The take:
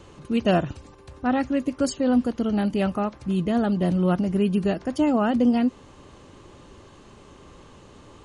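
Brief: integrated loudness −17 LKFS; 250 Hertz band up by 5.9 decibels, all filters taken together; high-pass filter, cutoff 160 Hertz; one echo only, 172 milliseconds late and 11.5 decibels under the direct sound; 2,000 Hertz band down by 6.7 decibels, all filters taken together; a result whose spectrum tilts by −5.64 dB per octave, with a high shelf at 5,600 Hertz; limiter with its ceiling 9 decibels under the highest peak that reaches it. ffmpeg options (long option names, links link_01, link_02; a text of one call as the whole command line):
ffmpeg -i in.wav -af "highpass=160,equalizer=frequency=250:width_type=o:gain=8,equalizer=frequency=2000:width_type=o:gain=-8.5,highshelf=frequency=5600:gain=-9,alimiter=limit=-14dB:level=0:latency=1,aecho=1:1:172:0.266,volume=5dB" out.wav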